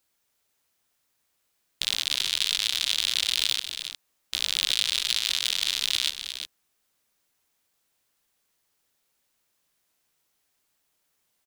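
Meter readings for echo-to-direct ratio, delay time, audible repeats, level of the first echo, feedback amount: −8.5 dB, 295 ms, 2, −20.0 dB, repeats not evenly spaced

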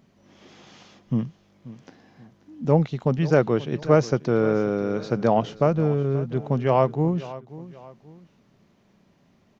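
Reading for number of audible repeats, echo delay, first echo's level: 2, 534 ms, −17.0 dB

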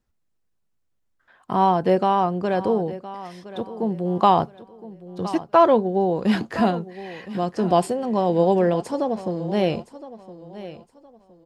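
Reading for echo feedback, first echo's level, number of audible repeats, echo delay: 28%, −15.5 dB, 2, 1,015 ms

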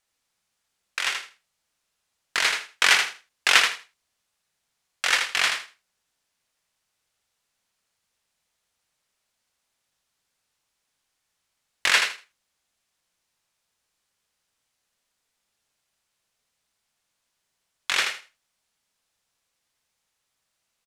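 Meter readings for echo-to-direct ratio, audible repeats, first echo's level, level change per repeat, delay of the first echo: −6.0 dB, 3, −6.0 dB, −14.5 dB, 80 ms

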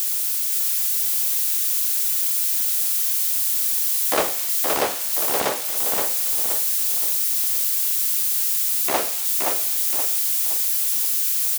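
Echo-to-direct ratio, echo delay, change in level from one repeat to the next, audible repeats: −3.0 dB, 522 ms, −7.5 dB, 5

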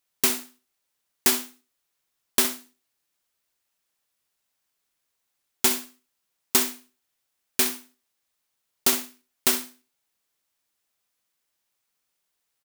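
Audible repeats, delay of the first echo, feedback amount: 2, 64 ms, 19%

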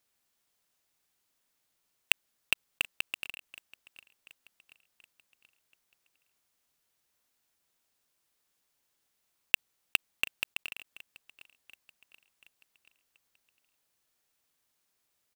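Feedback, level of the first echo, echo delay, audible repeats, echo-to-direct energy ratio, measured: 52%, −21.0 dB, 731 ms, 3, −19.5 dB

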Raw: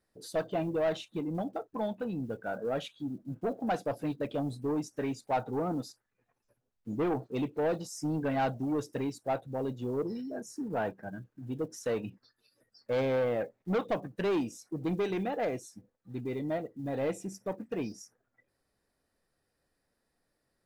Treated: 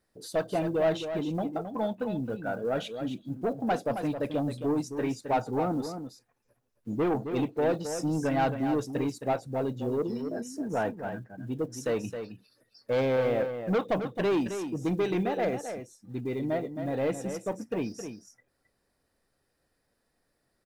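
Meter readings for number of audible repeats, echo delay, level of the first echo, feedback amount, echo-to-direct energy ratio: 1, 267 ms, −8.5 dB, repeats not evenly spaced, −8.5 dB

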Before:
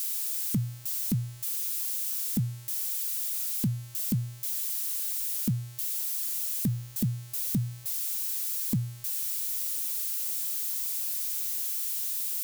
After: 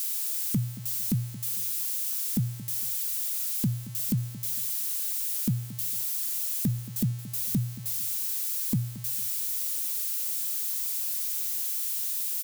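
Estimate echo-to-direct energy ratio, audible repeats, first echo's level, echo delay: −15.5 dB, 2, −16.0 dB, 226 ms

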